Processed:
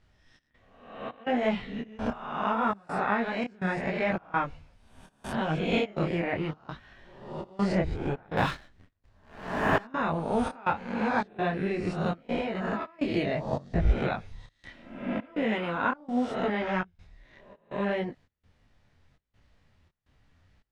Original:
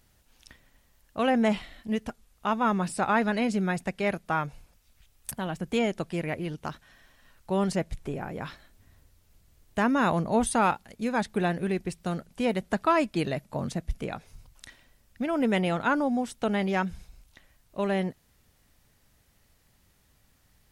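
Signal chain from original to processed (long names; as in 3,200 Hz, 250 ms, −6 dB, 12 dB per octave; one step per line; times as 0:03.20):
peak hold with a rise ahead of every peak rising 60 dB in 0.86 s
low-pass filter 3,400 Hz 12 dB per octave
parametric band 89 Hz +3.5 dB 0.75 octaves
0:08.37–0:09.85: leveller curve on the samples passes 2
0:12.18–0:12.99: downward compressor 16 to 1, threshold −30 dBFS, peak gain reduction 14.5 dB
gate pattern "xx.xxx.xxx.xx" 83 BPM −24 dB
speech leveller within 5 dB 0.5 s
0:05.65–0:06.05: double-tracking delay 44 ms −2.5 dB
micro pitch shift up and down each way 25 cents
level +2 dB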